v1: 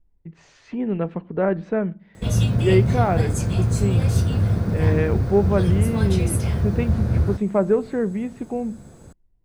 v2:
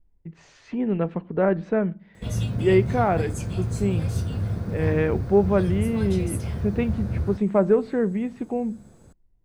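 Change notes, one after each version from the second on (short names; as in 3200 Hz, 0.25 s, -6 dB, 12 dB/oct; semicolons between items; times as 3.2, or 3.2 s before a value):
background -7.0 dB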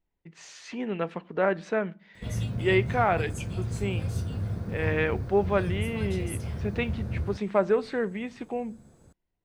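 speech: add tilt +4 dB/oct; background -4.5 dB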